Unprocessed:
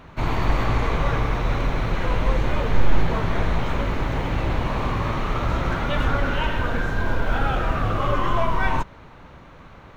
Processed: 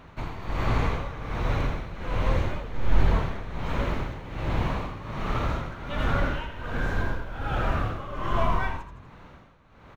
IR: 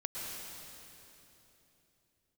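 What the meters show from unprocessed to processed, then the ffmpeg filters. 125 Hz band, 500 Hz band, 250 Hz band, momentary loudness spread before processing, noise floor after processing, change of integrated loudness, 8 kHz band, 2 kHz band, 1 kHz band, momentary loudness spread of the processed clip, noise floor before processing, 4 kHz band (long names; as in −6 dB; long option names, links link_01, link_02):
−4.5 dB, −6.0 dB, −5.5 dB, 3 LU, −51 dBFS, −5.5 dB, can't be measured, −6.0 dB, −6.0 dB, 8 LU, −45 dBFS, −6.5 dB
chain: -filter_complex "[0:a]asplit=5[link_01][link_02][link_03][link_04][link_05];[link_02]adelay=81,afreqshift=43,volume=-7.5dB[link_06];[link_03]adelay=162,afreqshift=86,volume=-16.6dB[link_07];[link_04]adelay=243,afreqshift=129,volume=-25.7dB[link_08];[link_05]adelay=324,afreqshift=172,volume=-34.9dB[link_09];[link_01][link_06][link_07][link_08][link_09]amix=inputs=5:normalize=0,tremolo=f=1.3:d=0.76,volume=-3.5dB"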